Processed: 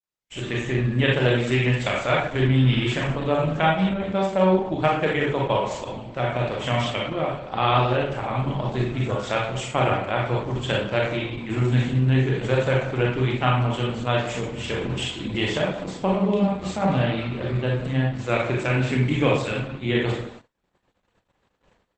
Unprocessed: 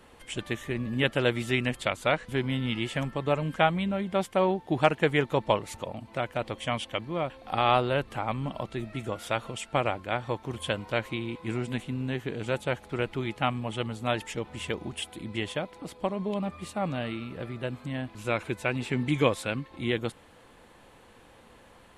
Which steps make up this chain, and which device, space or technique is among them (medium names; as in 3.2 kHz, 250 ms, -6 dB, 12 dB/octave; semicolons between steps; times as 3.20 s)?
speakerphone in a meeting room (reverberation RT60 0.55 s, pre-delay 28 ms, DRR -2.5 dB; speakerphone echo 180 ms, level -14 dB; level rider gain up to 11 dB; gate -35 dBFS, range -46 dB; trim -5 dB; Opus 12 kbps 48 kHz)